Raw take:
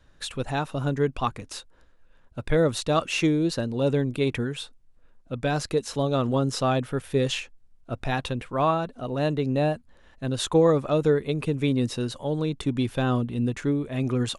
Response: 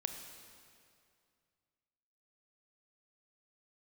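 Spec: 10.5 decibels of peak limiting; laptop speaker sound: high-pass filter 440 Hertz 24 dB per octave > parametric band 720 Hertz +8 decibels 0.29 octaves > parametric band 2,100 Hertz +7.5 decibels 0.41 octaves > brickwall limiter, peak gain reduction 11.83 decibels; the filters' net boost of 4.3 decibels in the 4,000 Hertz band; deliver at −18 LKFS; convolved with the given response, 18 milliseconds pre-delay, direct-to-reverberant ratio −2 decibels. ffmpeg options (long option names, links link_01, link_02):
-filter_complex "[0:a]equalizer=frequency=4000:width_type=o:gain=4.5,alimiter=limit=-19.5dB:level=0:latency=1,asplit=2[link_01][link_02];[1:a]atrim=start_sample=2205,adelay=18[link_03];[link_02][link_03]afir=irnorm=-1:irlink=0,volume=2dB[link_04];[link_01][link_04]amix=inputs=2:normalize=0,highpass=frequency=440:width=0.5412,highpass=frequency=440:width=1.3066,equalizer=frequency=720:width_type=o:width=0.29:gain=8,equalizer=frequency=2100:width_type=o:width=0.41:gain=7.5,volume=14dB,alimiter=limit=-8.5dB:level=0:latency=1"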